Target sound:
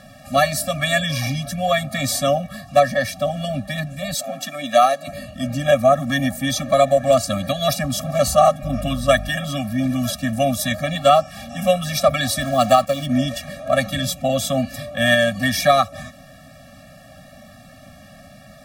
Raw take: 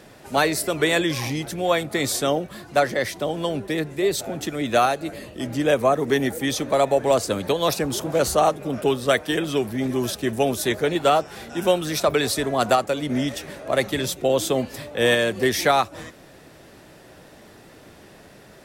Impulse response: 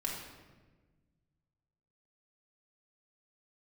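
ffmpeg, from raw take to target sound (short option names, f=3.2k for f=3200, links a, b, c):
-filter_complex "[0:a]asettb=1/sr,asplit=3[a][b][c];[a]atrim=end=4.144[d];[b]atrim=start=4.14:end=5.08,asetpts=PTS-STARTPTS,afade=t=in:d=0.004:c=qsin,afade=t=out:st=0.936:d=0.004:c=qsin,highpass=310[e];[c]atrim=start=5.076[f];[d][e]acrossfade=d=0.004:c1=hsin:c2=qsin[g];[g][f]acrossfade=d=0.004:c1=qsin:c2=hsin,asettb=1/sr,asplit=3[h][i][j];[h]atrim=end=8.634[k];[i]atrim=start=8.63:end=9.29,asetpts=PTS-STARTPTS,afade=t=in:d=0.004:c=qsin,afade=t=out:st=0.656:d=0.004:c=qsin,aeval=exprs='val(0)+0.02*(sin(2*PI*50*n/s)+sin(2*PI*2*50*n/s)/2+sin(2*PI*3*50*n/s)/3+sin(2*PI*4*50*n/s)/4+sin(2*PI*5*50*n/s)/5)':c=same[l];[j]atrim=start=9.286[m];[k][l]acrossfade=d=0.004:c1=hsin:c2=qsin[n];[n][m]acrossfade=d=0.004:c1=qsin:c2=hsin,asettb=1/sr,asplit=3[o][p][q];[o]atrim=end=12.414[r];[p]atrim=start=12.41:end=13.06,asetpts=PTS-STARTPTS,afade=t=in:d=0.004:c=qsin,afade=t=out:st=0.646:d=0.004:c=qsin,acrusher=bits=5:mix=0:aa=0.5[s];[q]atrim=start=13.056[t];[r][s]acrossfade=d=0.004:c1=hsin:c2=qsin[u];[u][t]acrossfade=d=0.004:c1=qsin:c2=hsin,afftfilt=real='re*eq(mod(floor(b*sr/1024/270),2),0)':imag='im*eq(mod(floor(b*sr/1024/270),2),0)':win_size=1024:overlap=0.75,volume=6dB"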